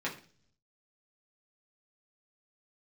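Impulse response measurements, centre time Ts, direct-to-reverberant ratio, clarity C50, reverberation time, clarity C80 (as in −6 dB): 18 ms, −5.0 dB, 11.0 dB, 0.45 s, 15.5 dB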